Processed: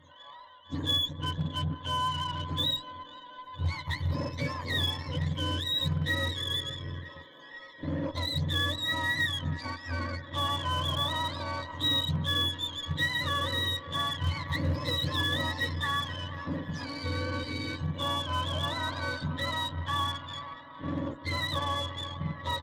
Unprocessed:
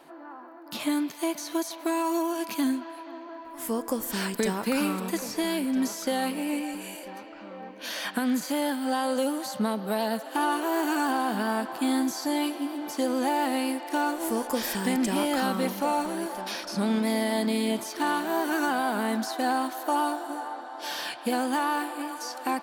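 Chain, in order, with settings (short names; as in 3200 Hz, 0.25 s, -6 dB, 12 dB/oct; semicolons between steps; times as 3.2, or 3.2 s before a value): spectrum mirrored in octaves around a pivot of 1000 Hz; ripple EQ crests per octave 1.1, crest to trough 16 dB; downsampling 32000 Hz; 18.63–19.26 small resonant body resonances 1500/3200 Hz, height 8 dB -> 13 dB; added harmonics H 8 -25 dB, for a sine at -15 dBFS; gain -6.5 dB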